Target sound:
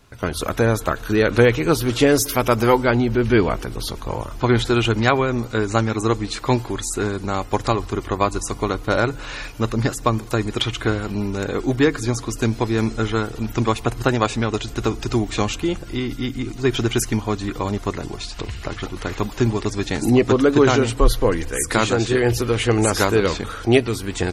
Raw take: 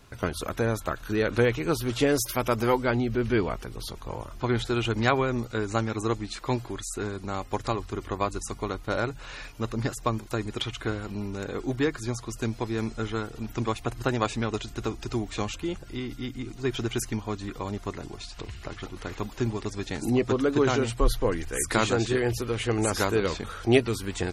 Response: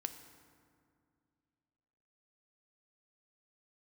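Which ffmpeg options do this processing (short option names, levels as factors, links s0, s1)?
-filter_complex "[0:a]dynaudnorm=f=180:g=3:m=2.82,asplit=2[s0][s1];[1:a]atrim=start_sample=2205[s2];[s1][s2]afir=irnorm=-1:irlink=0,volume=0.282[s3];[s0][s3]amix=inputs=2:normalize=0,volume=0.841"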